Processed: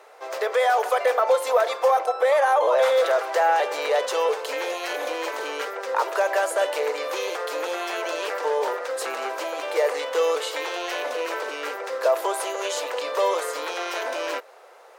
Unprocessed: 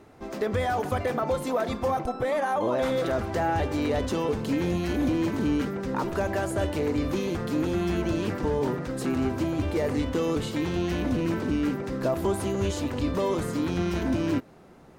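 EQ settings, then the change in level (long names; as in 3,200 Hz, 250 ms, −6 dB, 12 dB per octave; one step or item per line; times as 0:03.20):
elliptic high-pass filter 480 Hz, stop band 60 dB
+8.0 dB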